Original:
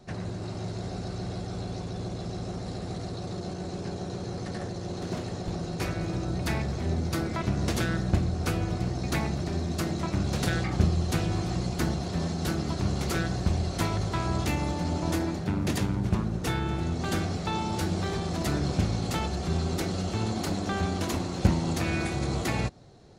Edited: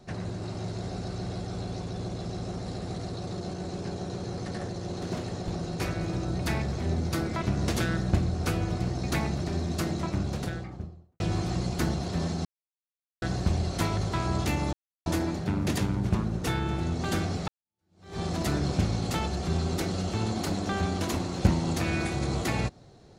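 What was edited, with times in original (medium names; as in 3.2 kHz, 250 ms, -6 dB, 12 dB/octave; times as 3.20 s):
9.84–11.20 s: studio fade out
12.45–13.22 s: mute
14.73–15.06 s: mute
17.48–18.20 s: fade in exponential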